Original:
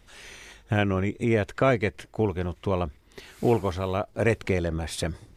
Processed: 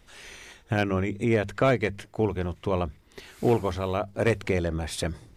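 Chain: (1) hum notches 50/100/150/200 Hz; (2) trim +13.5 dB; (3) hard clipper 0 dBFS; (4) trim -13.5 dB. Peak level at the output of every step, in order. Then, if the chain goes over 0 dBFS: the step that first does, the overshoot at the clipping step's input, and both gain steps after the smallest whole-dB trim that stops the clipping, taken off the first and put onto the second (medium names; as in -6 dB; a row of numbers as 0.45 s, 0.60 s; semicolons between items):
-8.0 dBFS, +5.5 dBFS, 0.0 dBFS, -13.5 dBFS; step 2, 5.5 dB; step 2 +7.5 dB, step 4 -7.5 dB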